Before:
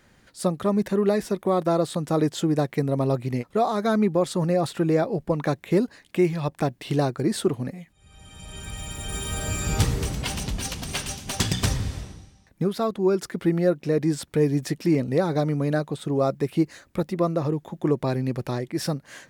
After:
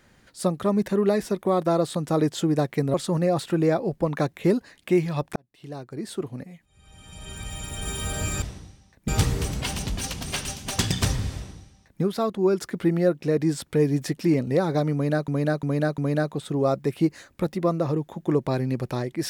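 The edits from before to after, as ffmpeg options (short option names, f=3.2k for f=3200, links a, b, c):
-filter_complex "[0:a]asplit=8[a][b][c][d][e][f][g][h];[a]atrim=end=2.942[i];[b]atrim=start=4.208:end=6.63,asetpts=PTS-STARTPTS,afade=t=out:st=2.418:d=0.004:c=hsin[j];[c]atrim=start=6.63:end=9.692,asetpts=PTS-STARTPTS,afade=t=in:d=1.93[k];[d]atrim=start=11.958:end=12.622[l];[e]atrim=start=9.688:end=15.892[m];[f]atrim=start=15.538:end=15.892[n];[g]atrim=start=15.538:end=15.892[o];[h]atrim=start=15.538[p];[j][k]concat=n=2:v=0:a=1[q];[i][q]acrossfade=d=0.004:c1=hsin:c2=hsin[r];[r][l]acrossfade=d=0.004:c1=hsin:c2=hsin[s];[s][m]acrossfade=d=0.004:c1=hsin:c2=hsin[t];[t][n]acrossfade=d=0.004:c1=hsin:c2=hsin[u];[u][o]acrossfade=d=0.004:c1=hsin:c2=hsin[v];[v][p]acrossfade=d=0.004:c1=hsin:c2=hsin"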